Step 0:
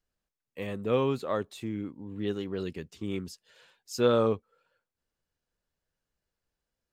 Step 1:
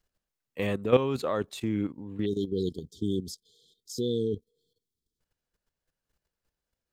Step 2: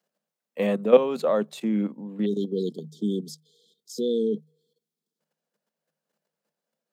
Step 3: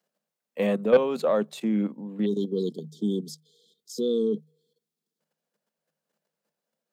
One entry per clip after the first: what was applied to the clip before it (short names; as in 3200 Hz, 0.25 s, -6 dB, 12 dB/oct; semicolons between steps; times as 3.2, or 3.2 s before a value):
spectral delete 2.26–5.2, 490–3100 Hz; level quantiser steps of 12 dB; gain +8 dB
rippled Chebyshev high-pass 150 Hz, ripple 9 dB; gain +8.5 dB
soft clip -9 dBFS, distortion -16 dB